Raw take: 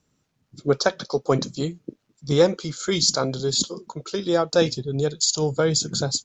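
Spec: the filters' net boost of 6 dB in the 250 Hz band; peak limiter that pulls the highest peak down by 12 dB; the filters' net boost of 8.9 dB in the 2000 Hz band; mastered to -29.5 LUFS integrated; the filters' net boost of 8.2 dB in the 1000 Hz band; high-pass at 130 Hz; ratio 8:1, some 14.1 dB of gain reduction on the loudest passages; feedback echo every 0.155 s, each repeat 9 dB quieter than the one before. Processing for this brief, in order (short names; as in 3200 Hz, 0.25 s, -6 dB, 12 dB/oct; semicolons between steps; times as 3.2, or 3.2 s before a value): HPF 130 Hz; bell 250 Hz +8.5 dB; bell 1000 Hz +8 dB; bell 2000 Hz +8.5 dB; compressor 8:1, threshold -23 dBFS; limiter -21 dBFS; feedback echo 0.155 s, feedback 35%, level -9 dB; gain +1.5 dB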